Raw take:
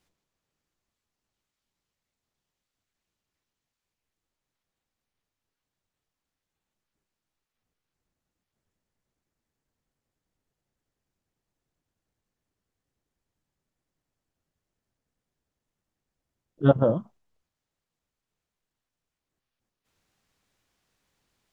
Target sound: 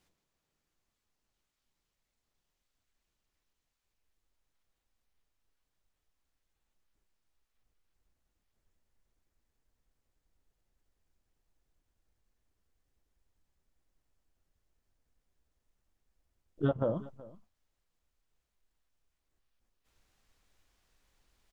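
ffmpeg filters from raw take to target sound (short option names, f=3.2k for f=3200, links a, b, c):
-af "asubboost=boost=5:cutoff=58,acompressor=threshold=-25dB:ratio=16,aecho=1:1:374:0.1"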